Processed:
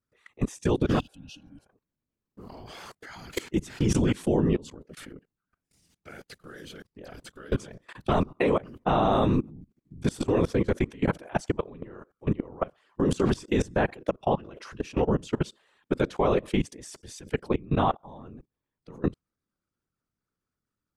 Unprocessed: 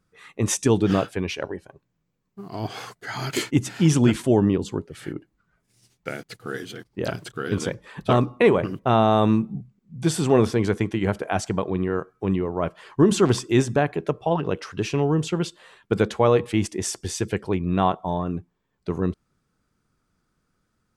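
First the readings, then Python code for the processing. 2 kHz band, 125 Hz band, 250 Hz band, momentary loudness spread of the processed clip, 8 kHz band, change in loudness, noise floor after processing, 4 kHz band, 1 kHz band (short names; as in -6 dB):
-6.0 dB, -6.0 dB, -5.5 dB, 21 LU, -11.5 dB, -4.5 dB, under -85 dBFS, -7.5 dB, -4.5 dB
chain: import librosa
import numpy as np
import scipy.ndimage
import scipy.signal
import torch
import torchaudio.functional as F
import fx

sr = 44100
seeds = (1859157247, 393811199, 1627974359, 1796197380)

y = fx.whisperise(x, sr, seeds[0])
y = fx.level_steps(y, sr, step_db=22)
y = fx.spec_repair(y, sr, seeds[1], start_s=1.02, length_s=0.6, low_hz=310.0, high_hz=2500.0, source='after')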